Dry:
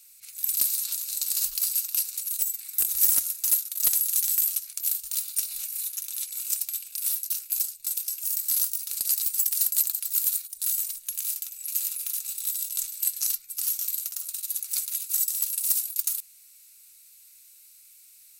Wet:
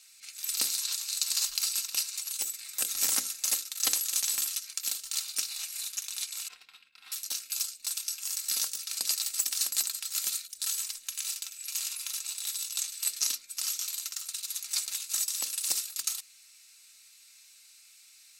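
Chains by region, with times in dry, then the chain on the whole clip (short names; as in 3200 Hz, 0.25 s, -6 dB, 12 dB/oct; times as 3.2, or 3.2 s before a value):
6.48–7.12 expander -39 dBFS + air absorption 440 m + notch comb 590 Hz
whole clip: three-band isolator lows -18 dB, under 160 Hz, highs -20 dB, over 7400 Hz; notches 60/120/180/240/300/360/420/480/540 Hz; comb 3.8 ms, depth 43%; gain +5 dB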